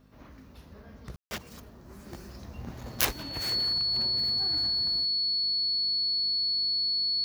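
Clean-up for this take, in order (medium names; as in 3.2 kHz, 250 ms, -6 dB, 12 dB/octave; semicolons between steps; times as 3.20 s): de-hum 51.3 Hz, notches 5; band-stop 4.4 kHz, Q 30; room tone fill 1.16–1.31 s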